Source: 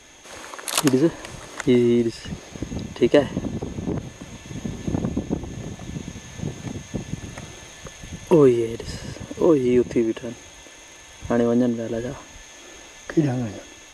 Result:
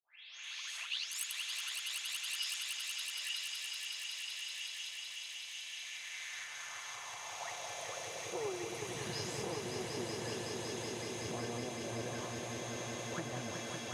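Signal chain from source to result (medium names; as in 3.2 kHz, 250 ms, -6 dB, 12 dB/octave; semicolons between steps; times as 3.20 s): delay that grows with frequency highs late, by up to 435 ms; compression 6:1, threshold -30 dBFS, peak gain reduction 18 dB; valve stage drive 24 dB, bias 0.6; peaking EQ 5.4 kHz +3.5 dB 1 oct; on a send: echo with a slow build-up 187 ms, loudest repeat 5, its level -6 dB; on the sum: high-pass sweep 2.8 kHz -> 240 Hz, 5.69–9.11 s; FFT filter 120 Hz 0 dB, 240 Hz -25 dB, 800 Hz -7 dB; trim +4.5 dB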